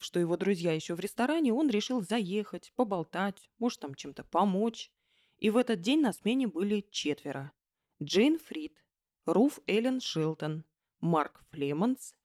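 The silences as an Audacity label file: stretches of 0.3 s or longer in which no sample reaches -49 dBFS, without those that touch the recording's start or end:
4.850000	5.420000	silence
7.500000	8.010000	silence
8.770000	9.270000	silence
10.620000	11.030000	silence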